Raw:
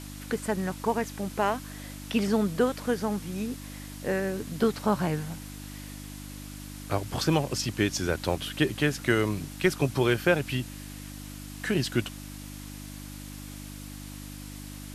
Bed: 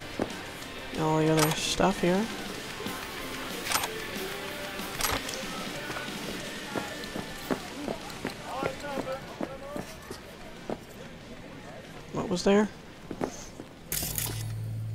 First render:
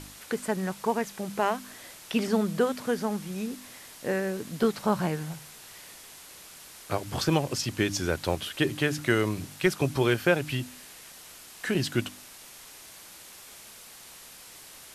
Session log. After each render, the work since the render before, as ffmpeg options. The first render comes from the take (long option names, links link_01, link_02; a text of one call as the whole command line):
ffmpeg -i in.wav -af "bandreject=frequency=50:width_type=h:width=4,bandreject=frequency=100:width_type=h:width=4,bandreject=frequency=150:width_type=h:width=4,bandreject=frequency=200:width_type=h:width=4,bandreject=frequency=250:width_type=h:width=4,bandreject=frequency=300:width_type=h:width=4" out.wav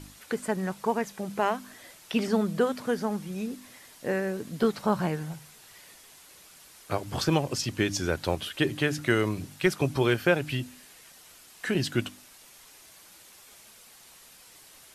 ffmpeg -i in.wav -af "afftdn=noise_reduction=6:noise_floor=-48" out.wav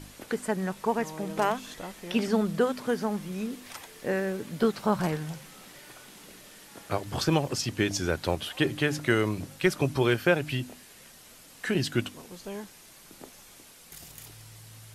ffmpeg -i in.wav -i bed.wav -filter_complex "[1:a]volume=-16dB[link_01];[0:a][link_01]amix=inputs=2:normalize=0" out.wav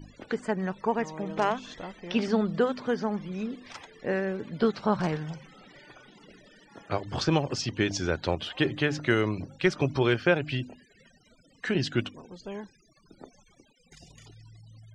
ffmpeg -i in.wav -af "afftfilt=real='re*gte(hypot(re,im),0.00447)':imag='im*gte(hypot(re,im),0.00447)':win_size=1024:overlap=0.75,lowpass=frequency=6300:width=0.5412,lowpass=frequency=6300:width=1.3066" out.wav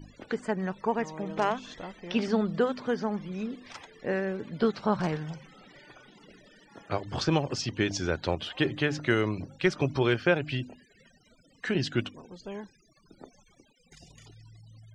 ffmpeg -i in.wav -af "volume=-1dB" out.wav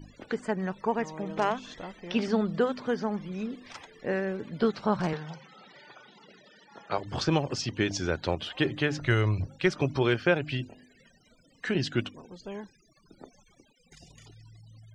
ffmpeg -i in.wav -filter_complex "[0:a]asettb=1/sr,asplit=3[link_01][link_02][link_03];[link_01]atrim=end=5.134[link_04];[link_02]atrim=start=5.13:end=6.98,asetpts=PTS-STARTPTS,afade=type=in:duration=0.004:curve=qsin,afade=type=out:start_time=1.846:duration=0.004:curve=qsin,highpass=170,equalizer=frequency=290:width_type=q:width=4:gain=-7,equalizer=frequency=880:width_type=q:width=4:gain=5,equalizer=frequency=1300:width_type=q:width=4:gain=3,equalizer=frequency=4000:width_type=q:width=4:gain=5,lowpass=frequency=6600:width=0.5412,lowpass=frequency=6600:width=1.3066[link_05];[link_03]atrim=start=6.976[link_06];[link_04][link_05]acrossfade=duration=0.004:curve1=hsin:curve2=qsin[link_07];[link_07][link_06]acrossfade=duration=0.004:curve1=qsin:curve2=hsin,asplit=3[link_08][link_09][link_10];[link_08]afade=type=out:start_time=9:duration=0.02[link_11];[link_09]asubboost=boost=9.5:cutoff=77,afade=type=in:start_time=9:duration=0.02,afade=type=out:start_time=9.46:duration=0.02[link_12];[link_10]afade=type=in:start_time=9.46:duration=0.02[link_13];[link_11][link_12][link_13]amix=inputs=3:normalize=0,asettb=1/sr,asplit=3[link_14][link_15][link_16];[link_14]atrim=end=10.574[link_17];[link_15]atrim=start=10.57:end=11.68,asetpts=PTS-STARTPTS,afade=type=in:duration=0.004:curve=qsin,afade=type=out:start_time=1.106:duration=0.004:curve=qsin,bandreject=frequency=50.25:width_type=h:width=4,bandreject=frequency=100.5:width_type=h:width=4,bandreject=frequency=150.75:width_type=h:width=4,bandreject=frequency=201:width_type=h:width=4,bandreject=frequency=251.25:width_type=h:width=4,bandreject=frequency=301.5:width_type=h:width=4,bandreject=frequency=351.75:width_type=h:width=4,bandreject=frequency=402:width_type=h:width=4,bandreject=frequency=452.25:width_type=h:width=4,bandreject=frequency=502.5:width_type=h:width=4,bandreject=frequency=552.75:width_type=h:width=4,bandreject=frequency=603:width_type=h:width=4,bandreject=frequency=653.25:width_type=h:width=4,bandreject=frequency=703.5:width_type=h:width=4,bandreject=frequency=753.75:width_type=h:width=4,bandreject=frequency=804:width_type=h:width=4,bandreject=frequency=854.25:width_type=h:width=4,bandreject=frequency=904.5:width_type=h:width=4,bandreject=frequency=954.75:width_type=h:width=4,bandreject=frequency=1005:width_type=h:width=4,bandreject=frequency=1055.25:width_type=h:width=4,bandreject=frequency=1105.5:width_type=h:width=4[link_18];[link_16]atrim=start=11.676[link_19];[link_17][link_18]acrossfade=duration=0.004:curve1=hsin:curve2=qsin[link_20];[link_20][link_19]acrossfade=duration=0.004:curve1=qsin:curve2=hsin" out.wav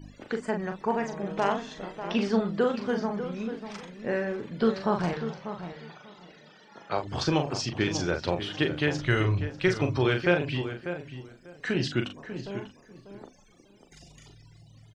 ffmpeg -i in.wav -filter_complex "[0:a]asplit=2[link_01][link_02];[link_02]adelay=40,volume=-6dB[link_03];[link_01][link_03]amix=inputs=2:normalize=0,asplit=2[link_04][link_05];[link_05]adelay=593,lowpass=frequency=2000:poles=1,volume=-10dB,asplit=2[link_06][link_07];[link_07]adelay=593,lowpass=frequency=2000:poles=1,volume=0.19,asplit=2[link_08][link_09];[link_09]adelay=593,lowpass=frequency=2000:poles=1,volume=0.19[link_10];[link_04][link_06][link_08][link_10]amix=inputs=4:normalize=0" out.wav